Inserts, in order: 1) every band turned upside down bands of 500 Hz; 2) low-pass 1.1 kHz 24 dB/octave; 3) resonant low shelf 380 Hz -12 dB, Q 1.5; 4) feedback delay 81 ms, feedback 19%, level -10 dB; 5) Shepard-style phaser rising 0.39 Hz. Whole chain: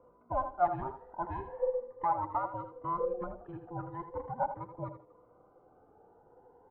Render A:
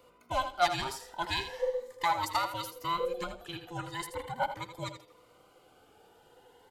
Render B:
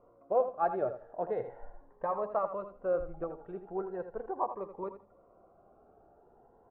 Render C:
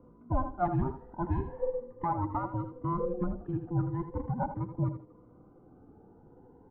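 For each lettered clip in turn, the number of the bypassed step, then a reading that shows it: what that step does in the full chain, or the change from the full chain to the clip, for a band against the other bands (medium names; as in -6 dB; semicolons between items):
2, 2 kHz band +14.0 dB; 1, 125 Hz band -7.5 dB; 3, 125 Hz band +14.0 dB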